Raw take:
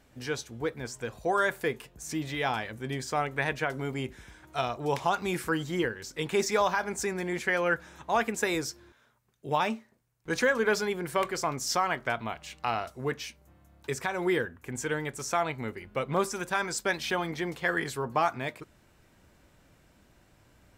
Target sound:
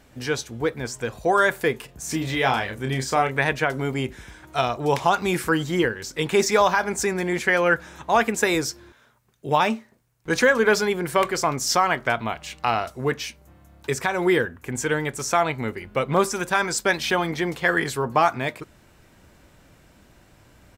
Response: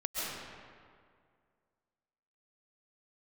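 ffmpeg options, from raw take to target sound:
-filter_complex "[0:a]asplit=3[s0][s1][s2];[s0]afade=t=out:st=1.88:d=0.02[s3];[s1]asplit=2[s4][s5];[s5]adelay=30,volume=0.473[s6];[s4][s6]amix=inputs=2:normalize=0,afade=t=in:st=1.88:d=0.02,afade=t=out:st=3.37:d=0.02[s7];[s2]afade=t=in:st=3.37:d=0.02[s8];[s3][s7][s8]amix=inputs=3:normalize=0,volume=2.37"

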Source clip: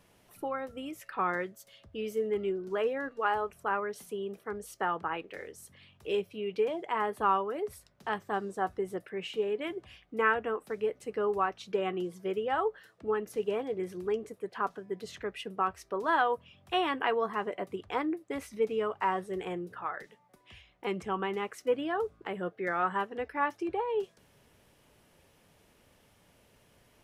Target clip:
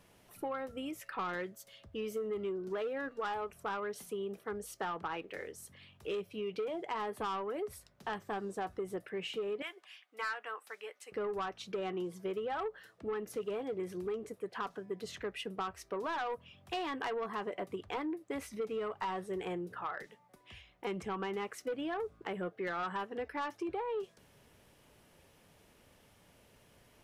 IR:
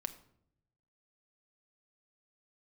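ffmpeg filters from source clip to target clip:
-filter_complex "[0:a]asettb=1/sr,asplit=3[s0][s1][s2];[s0]atrim=end=9.624[s3];[s1]atrim=start=9.62:end=11.12,asetpts=PTS-STARTPTS,afade=t=in:d=0.004:c=qsin,afade=t=out:st=1.496:d=0.004:c=qsin,highpass=1100[s4];[s2]atrim=start=11.116[s5];[s3][s4]acrossfade=d=0.004:c1=hsin:c2=qsin[s6];[s6][s5]acrossfade=d=0.004:c1=qsin:c2=hsin,asoftclip=type=tanh:threshold=0.0501,acompressor=threshold=0.02:ratio=6"

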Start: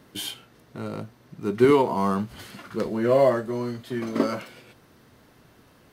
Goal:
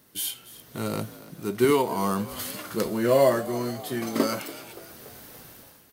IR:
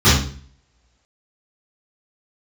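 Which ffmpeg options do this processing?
-filter_complex "[0:a]aemphasis=mode=production:type=75fm,dynaudnorm=f=130:g=7:m=4.73,asplit=2[s0][s1];[s1]asplit=5[s2][s3][s4][s5][s6];[s2]adelay=286,afreqshift=55,volume=0.133[s7];[s3]adelay=572,afreqshift=110,volume=0.0759[s8];[s4]adelay=858,afreqshift=165,volume=0.0432[s9];[s5]adelay=1144,afreqshift=220,volume=0.0248[s10];[s6]adelay=1430,afreqshift=275,volume=0.0141[s11];[s7][s8][s9][s10][s11]amix=inputs=5:normalize=0[s12];[s0][s12]amix=inputs=2:normalize=0,volume=0.398"

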